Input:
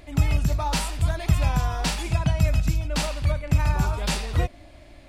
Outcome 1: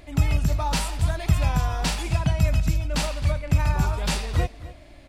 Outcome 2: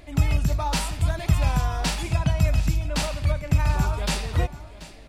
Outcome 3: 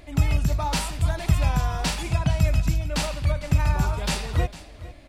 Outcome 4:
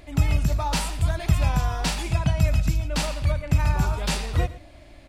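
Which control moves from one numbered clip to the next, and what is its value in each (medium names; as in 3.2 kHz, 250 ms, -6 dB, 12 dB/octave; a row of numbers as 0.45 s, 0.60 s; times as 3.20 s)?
delay, time: 263 ms, 733 ms, 453 ms, 116 ms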